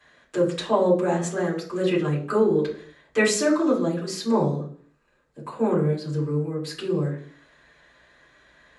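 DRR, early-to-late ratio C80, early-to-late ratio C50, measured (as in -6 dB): -7.0 dB, 13.5 dB, 8.0 dB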